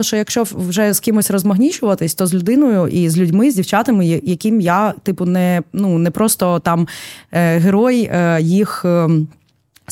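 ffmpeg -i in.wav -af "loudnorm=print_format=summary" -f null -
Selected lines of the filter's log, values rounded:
Input Integrated:    -14.7 LUFS
Input True Peak:      -2.0 dBTP
Input LRA:             1.5 LU
Input Threshold:     -25.2 LUFS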